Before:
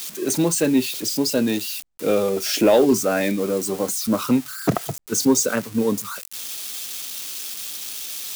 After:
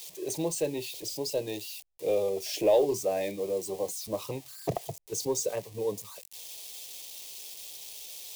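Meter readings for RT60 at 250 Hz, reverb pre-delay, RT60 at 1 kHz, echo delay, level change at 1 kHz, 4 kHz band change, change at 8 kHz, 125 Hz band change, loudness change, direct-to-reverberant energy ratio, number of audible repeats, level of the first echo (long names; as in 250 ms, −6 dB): no reverb audible, no reverb audible, no reverb audible, no echo audible, −10.0 dB, −11.0 dB, −11.5 dB, −11.5 dB, −10.5 dB, no reverb audible, no echo audible, no echo audible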